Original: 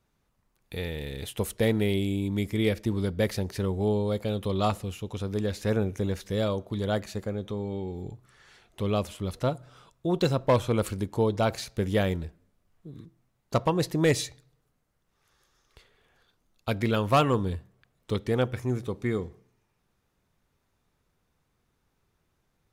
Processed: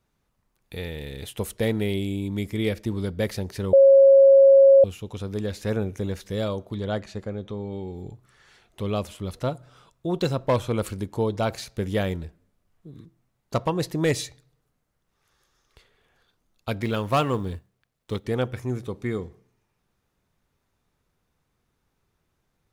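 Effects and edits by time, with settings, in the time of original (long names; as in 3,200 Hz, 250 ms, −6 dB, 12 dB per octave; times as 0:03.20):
0:03.73–0:04.84: beep over 546 Hz −9.5 dBFS
0:06.75–0:07.73: high-frequency loss of the air 64 metres
0:16.81–0:18.24: mu-law and A-law mismatch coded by A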